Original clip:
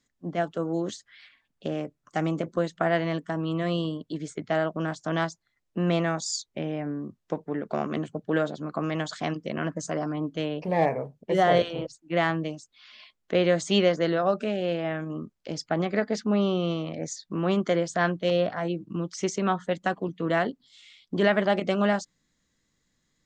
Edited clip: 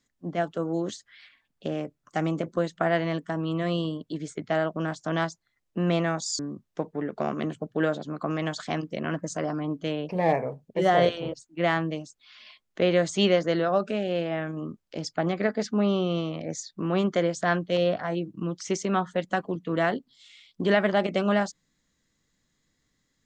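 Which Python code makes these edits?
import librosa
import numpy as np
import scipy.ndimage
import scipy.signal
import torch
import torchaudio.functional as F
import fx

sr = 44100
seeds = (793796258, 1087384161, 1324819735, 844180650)

y = fx.edit(x, sr, fx.cut(start_s=6.39, length_s=0.53), tone=tone)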